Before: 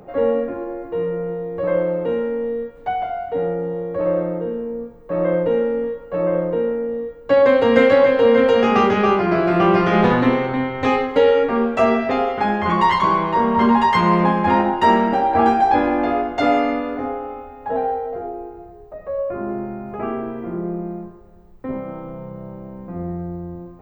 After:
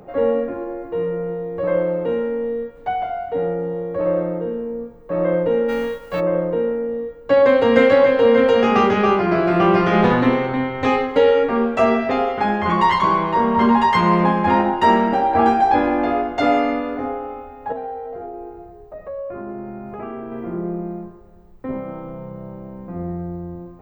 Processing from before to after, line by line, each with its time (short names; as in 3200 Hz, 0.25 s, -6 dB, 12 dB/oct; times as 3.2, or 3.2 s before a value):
5.68–6.19 spectral whitening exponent 0.6
17.72–20.32 compressor 2.5:1, threshold -29 dBFS